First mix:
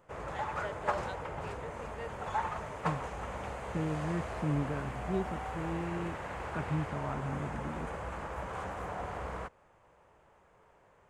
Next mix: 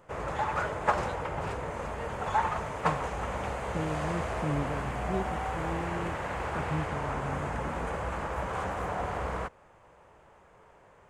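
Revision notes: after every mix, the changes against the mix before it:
background +6.0 dB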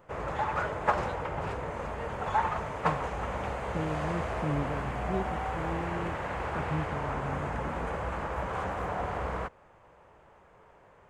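master: add peaking EQ 9.7 kHz -6.5 dB 1.6 oct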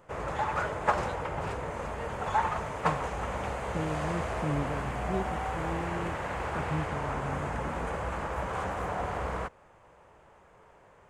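master: add peaking EQ 9.7 kHz +6.5 dB 1.6 oct

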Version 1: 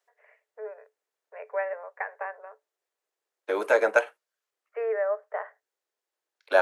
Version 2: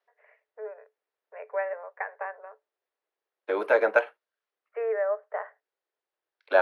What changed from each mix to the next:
master: add boxcar filter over 6 samples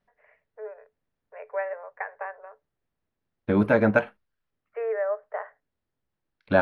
second voice: remove steep high-pass 390 Hz 36 dB/octave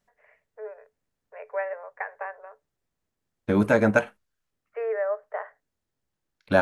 master: remove boxcar filter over 6 samples

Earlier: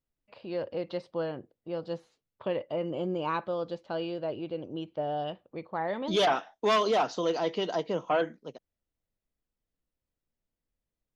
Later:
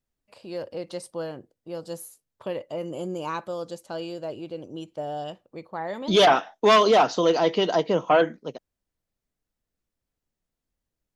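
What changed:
first voice: remove low-pass 3.9 kHz 24 dB/octave; second voice +8.0 dB

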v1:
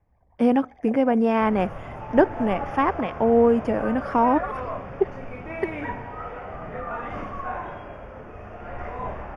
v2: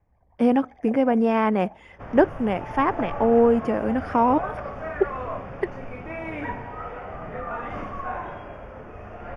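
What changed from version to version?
second sound: entry +0.60 s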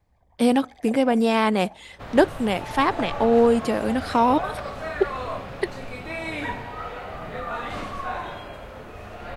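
master: remove boxcar filter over 11 samples

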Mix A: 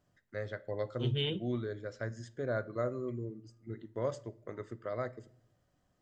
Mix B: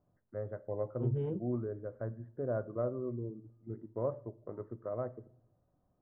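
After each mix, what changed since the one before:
master: add low-pass 1.1 kHz 24 dB/octave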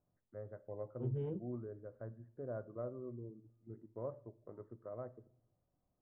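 first voice -8.5 dB; second voice -4.5 dB

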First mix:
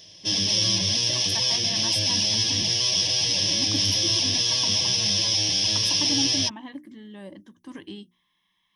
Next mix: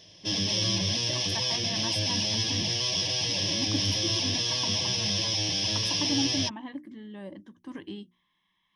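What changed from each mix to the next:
master: add treble shelf 4.5 kHz -11 dB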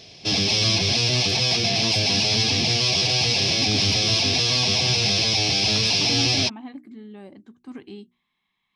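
background +9.0 dB; master: remove rippled EQ curve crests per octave 1.2, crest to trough 10 dB

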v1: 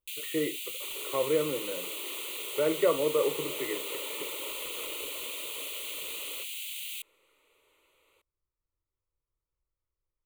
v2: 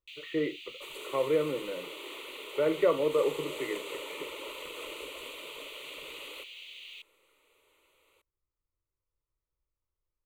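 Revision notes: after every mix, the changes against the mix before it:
first sound: add distance through air 230 m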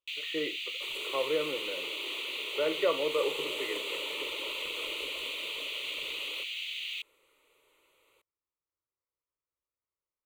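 speech: add high-pass 510 Hz 6 dB/octave; first sound +9.5 dB

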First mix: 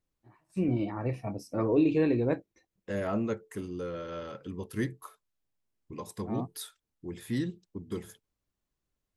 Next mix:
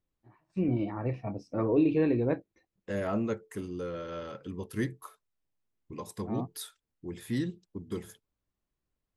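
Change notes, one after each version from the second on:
first voice: add distance through air 160 m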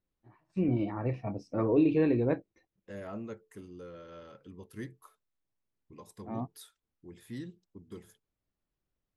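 second voice -10.0 dB

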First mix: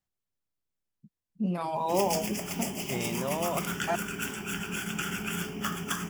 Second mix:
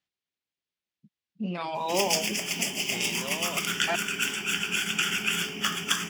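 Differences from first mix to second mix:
first voice: add distance through air 110 m; second voice -5.5 dB; master: add frequency weighting D

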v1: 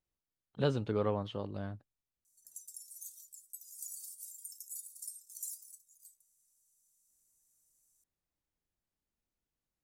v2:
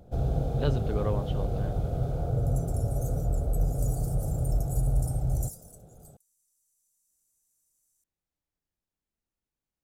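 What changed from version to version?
first sound: unmuted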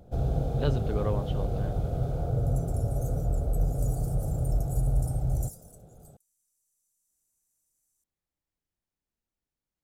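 second sound -3.0 dB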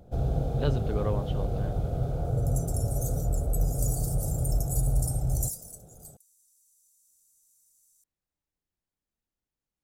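second sound +11.5 dB

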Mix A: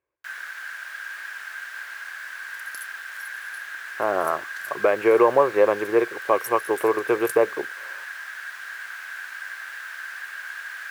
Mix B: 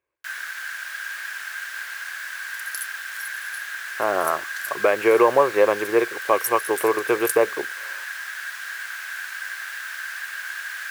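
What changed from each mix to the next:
master: add treble shelf 2.4 kHz +9 dB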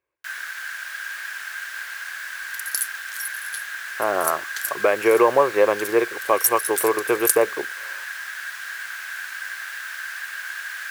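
second sound +8.0 dB

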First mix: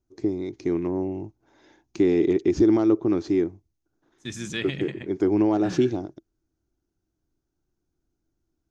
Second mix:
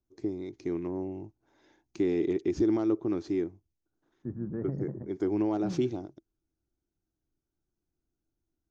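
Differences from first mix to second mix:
first voice -7.5 dB; second voice: add Gaussian low-pass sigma 9.6 samples

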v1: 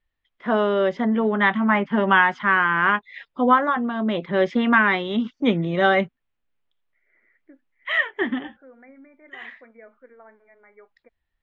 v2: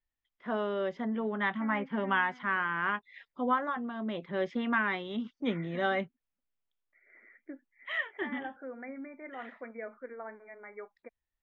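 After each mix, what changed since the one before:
first voice -12.0 dB; second voice +5.5 dB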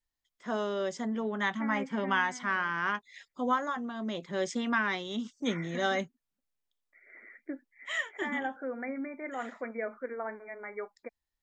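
second voice +6.0 dB; master: remove low-pass 3.1 kHz 24 dB/octave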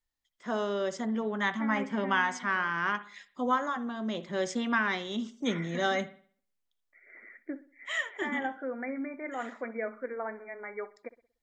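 reverb: on

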